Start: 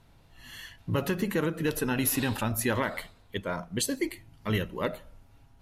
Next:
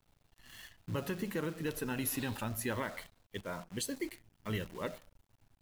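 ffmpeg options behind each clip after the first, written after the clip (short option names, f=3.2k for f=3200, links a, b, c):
-af "acrusher=bits=8:dc=4:mix=0:aa=0.000001,volume=-8.5dB"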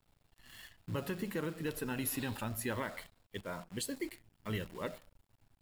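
-af "bandreject=f=6.1k:w=12,volume=-1dB"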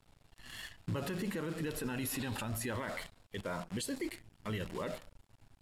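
-af "lowpass=11k,alimiter=level_in=12dB:limit=-24dB:level=0:latency=1:release=37,volume=-12dB,volume=7dB"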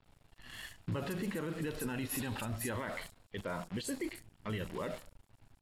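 -filter_complex "[0:a]acrossover=split=5000[a][b];[b]adelay=40[c];[a][c]amix=inputs=2:normalize=0"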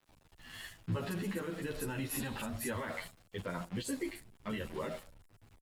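-filter_complex "[0:a]acrossover=split=7200[a][b];[a]aeval=exprs='val(0)*gte(abs(val(0)),0.00133)':c=same[c];[c][b]amix=inputs=2:normalize=0,asplit=2[d][e];[e]adelay=10.7,afreqshift=0.42[f];[d][f]amix=inputs=2:normalize=1,volume=3dB"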